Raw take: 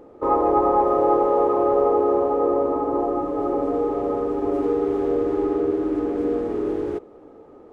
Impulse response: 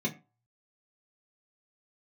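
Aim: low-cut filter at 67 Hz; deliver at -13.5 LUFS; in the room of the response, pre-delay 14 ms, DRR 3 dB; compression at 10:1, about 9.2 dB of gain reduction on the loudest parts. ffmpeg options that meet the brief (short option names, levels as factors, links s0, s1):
-filter_complex "[0:a]highpass=67,acompressor=threshold=0.0631:ratio=10,asplit=2[s0][s1];[1:a]atrim=start_sample=2205,adelay=14[s2];[s1][s2]afir=irnorm=-1:irlink=0,volume=0.376[s3];[s0][s3]amix=inputs=2:normalize=0,volume=4.47"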